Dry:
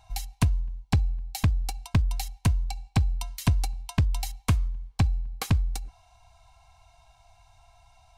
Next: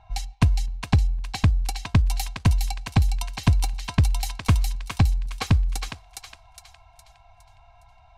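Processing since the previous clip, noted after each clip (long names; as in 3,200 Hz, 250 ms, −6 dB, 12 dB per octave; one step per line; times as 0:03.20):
low-pass that shuts in the quiet parts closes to 2,300 Hz, open at −23 dBFS
feedback echo with a high-pass in the loop 412 ms, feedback 44%, high-pass 1,200 Hz, level −3 dB
level +4 dB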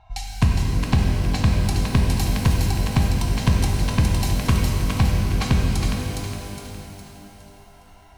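reverb with rising layers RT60 3 s, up +12 semitones, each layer −8 dB, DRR −0.5 dB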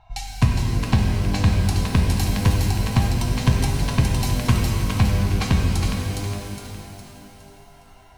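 flanger 0.26 Hz, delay 7 ms, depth 4.2 ms, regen +54%
level +4.5 dB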